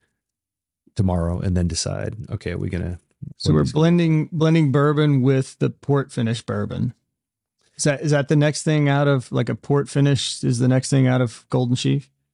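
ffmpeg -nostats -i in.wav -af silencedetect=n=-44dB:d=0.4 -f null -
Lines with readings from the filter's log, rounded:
silence_start: 0.00
silence_end: 0.87 | silence_duration: 0.87
silence_start: 6.91
silence_end: 7.78 | silence_duration: 0.87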